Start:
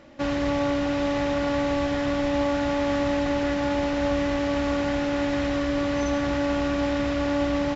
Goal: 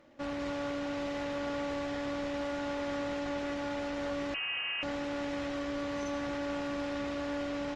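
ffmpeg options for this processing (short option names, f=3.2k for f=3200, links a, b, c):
-filter_complex "[0:a]lowshelf=f=170:g=-6,bandreject=f=62.91:t=h:w=4,bandreject=f=125.82:t=h:w=4,bandreject=f=188.73:t=h:w=4,aeval=exprs='clip(val(0),-1,0.0668)':c=same,asettb=1/sr,asplit=3[a][b][c];[a]atrim=end=4.344[d];[b]atrim=start=4.34:end=4.83,asetpts=PTS-STARTPTS,afade=t=in:d=0.004:c=qsin,afade=t=out:st=0.486:d=0.004:c=qsin,lowpass=f=2.6k:t=q:w=0.5098,lowpass=f=2.6k:t=q:w=0.6013,lowpass=f=2.6k:t=q:w=0.9,lowpass=f=2.6k:t=q:w=2.563,afreqshift=-3100[e];[c]atrim=start=4.826[f];[d][e]acrossfade=d=0.004:c1=hsin:c2=qsin[g];[g][f]acrossfade=d=0.004:c1=qsin:c2=hsin,volume=-8.5dB" -ar 48000 -c:a libopus -b:a 32k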